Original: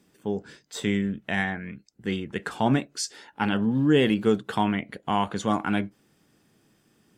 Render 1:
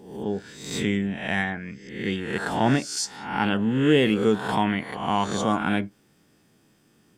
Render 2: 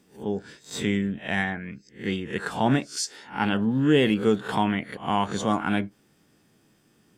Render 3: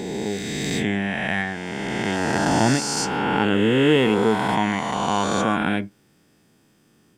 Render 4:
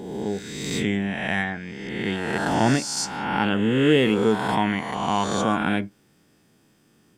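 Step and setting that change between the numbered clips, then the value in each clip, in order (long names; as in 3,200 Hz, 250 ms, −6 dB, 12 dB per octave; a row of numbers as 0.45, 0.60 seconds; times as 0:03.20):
peak hold with a rise ahead of every peak, rising 60 dB in: 0.73, 0.31, 3.19, 1.53 seconds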